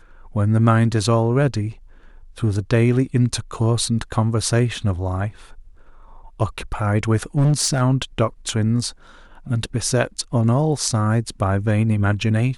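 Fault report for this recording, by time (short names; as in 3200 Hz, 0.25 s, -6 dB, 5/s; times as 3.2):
7.37–7.82 clipped -12.5 dBFS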